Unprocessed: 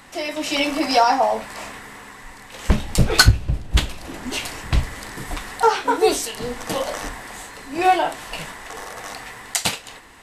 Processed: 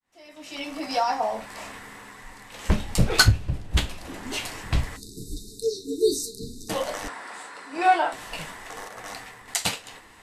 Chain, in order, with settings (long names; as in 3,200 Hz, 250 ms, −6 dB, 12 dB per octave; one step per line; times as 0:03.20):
fade in at the beginning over 1.79 s
0:04.96–0:06.69: time-frequency box erased 470–3,600 Hz
flanger 0.89 Hz, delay 9.3 ms, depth 2.1 ms, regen −55%
0:07.08–0:08.13: loudspeaker in its box 310–9,300 Hz, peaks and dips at 990 Hz +3 dB, 1,400 Hz +6 dB, 3,100 Hz −3 dB, 6,500 Hz −7 dB
0:08.88–0:09.48: multiband upward and downward expander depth 100%